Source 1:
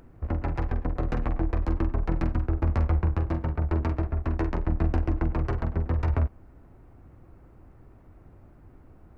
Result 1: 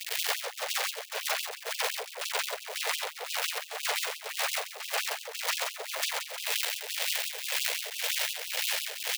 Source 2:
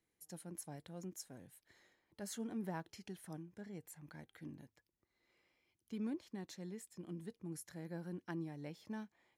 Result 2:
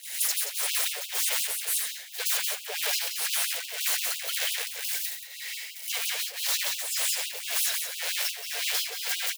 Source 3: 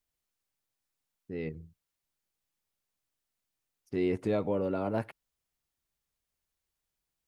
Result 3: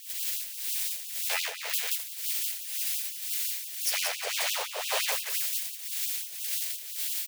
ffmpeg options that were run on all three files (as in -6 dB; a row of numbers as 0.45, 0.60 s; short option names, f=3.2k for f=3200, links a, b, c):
-filter_complex "[0:a]aeval=exprs='val(0)+0.5*0.00944*sgn(val(0))':c=same,equalizer=f=2.4k:t=o:w=2.6:g=-11.5,agate=range=-21dB:threshold=-48dB:ratio=16:detection=peak,bass=f=250:g=-11,treble=f=4k:g=-15,acrossover=split=160|2400[a][b][c];[b]alimiter=level_in=7.5dB:limit=-24dB:level=0:latency=1:release=56,volume=-7.5dB[d];[a][d][c]amix=inputs=3:normalize=0,aexciter=amount=12.4:drive=6.4:freq=2k,afreqshift=-130,aeval=exprs='0.0841*sin(PI/2*6.31*val(0)/0.0841)':c=same,asplit=2[e][f];[f]aecho=0:1:177.8|259.5:0.794|0.355[g];[e][g]amix=inputs=2:normalize=0,acrossover=split=460[h][i];[h]aeval=exprs='val(0)*(1-0.7/2+0.7/2*cos(2*PI*1.9*n/s))':c=same[j];[i]aeval=exprs='val(0)*(1-0.7/2-0.7/2*cos(2*PI*1.9*n/s))':c=same[k];[j][k]amix=inputs=2:normalize=0,acompressor=threshold=-29dB:ratio=3,afftfilt=real='re*gte(b*sr/1024,390*pow(2600/390,0.5+0.5*sin(2*PI*5.8*pts/sr)))':imag='im*gte(b*sr/1024,390*pow(2600/390,0.5+0.5*sin(2*PI*5.8*pts/sr)))':win_size=1024:overlap=0.75,volume=4dB"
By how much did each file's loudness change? -2.5, +20.5, +4.0 LU